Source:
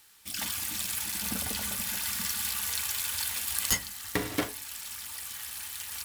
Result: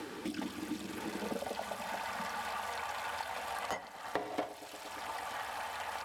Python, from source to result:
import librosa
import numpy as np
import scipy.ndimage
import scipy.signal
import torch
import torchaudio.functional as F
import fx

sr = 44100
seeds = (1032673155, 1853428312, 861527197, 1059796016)

y = fx.echo_filtered(x, sr, ms=116, feedback_pct=64, hz=2000.0, wet_db=-17.5)
y = fx.filter_sweep_bandpass(y, sr, from_hz=340.0, to_hz=690.0, start_s=0.92, end_s=1.64, q=3.3)
y = fx.band_squash(y, sr, depth_pct=100)
y = y * 10.0 ** (12.5 / 20.0)